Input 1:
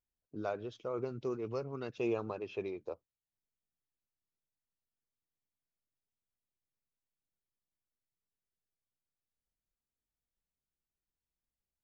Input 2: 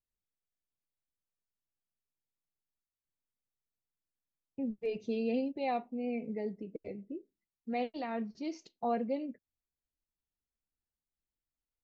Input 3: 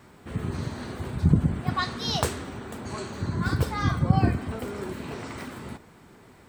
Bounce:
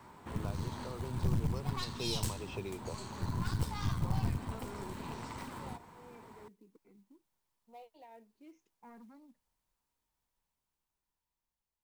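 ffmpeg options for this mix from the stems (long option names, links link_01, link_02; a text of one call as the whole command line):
ffmpeg -i stem1.wav -i stem2.wav -i stem3.wav -filter_complex "[0:a]dynaudnorm=framelen=930:gausssize=5:maxgain=10.5dB,volume=-2dB[link_01];[1:a]asoftclip=type=tanh:threshold=-29.5dB,asplit=2[link_02][link_03];[link_03]afreqshift=-0.48[link_04];[link_02][link_04]amix=inputs=2:normalize=1,volume=-16.5dB[link_05];[2:a]aeval=exprs='(tanh(15.8*val(0)+0.7)-tanh(0.7))/15.8':channel_layout=same,volume=-2dB[link_06];[link_01][link_05][link_06]amix=inputs=3:normalize=0,equalizer=frequency=950:width=3.3:gain=12.5,acrossover=split=210|3000[link_07][link_08][link_09];[link_08]acompressor=threshold=-43dB:ratio=6[link_10];[link_07][link_10][link_09]amix=inputs=3:normalize=0,acrusher=bits=6:mode=log:mix=0:aa=0.000001" out.wav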